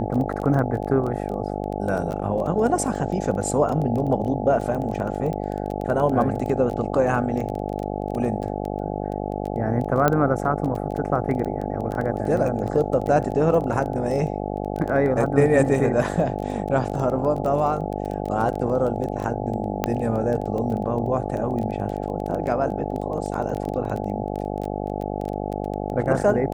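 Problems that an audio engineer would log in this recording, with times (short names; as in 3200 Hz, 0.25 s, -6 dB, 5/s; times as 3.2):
buzz 50 Hz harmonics 17 -28 dBFS
crackle 13/s -27 dBFS
10.08 pop -6 dBFS
19.84 pop -8 dBFS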